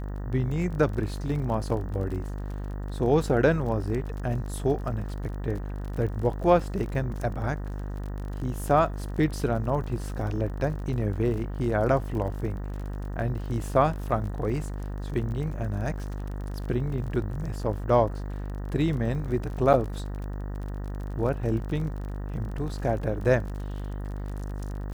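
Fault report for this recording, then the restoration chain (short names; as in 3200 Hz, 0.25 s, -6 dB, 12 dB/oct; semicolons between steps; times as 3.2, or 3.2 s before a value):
buzz 50 Hz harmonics 38 -33 dBFS
crackle 33/s -35 dBFS
19.73–19.74 gap 7.9 ms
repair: de-click; de-hum 50 Hz, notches 38; interpolate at 19.73, 7.9 ms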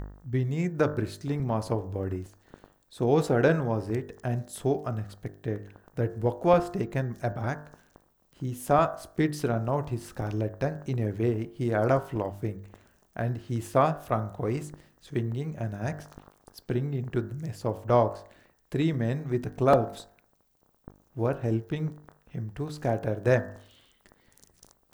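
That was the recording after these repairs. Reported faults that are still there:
none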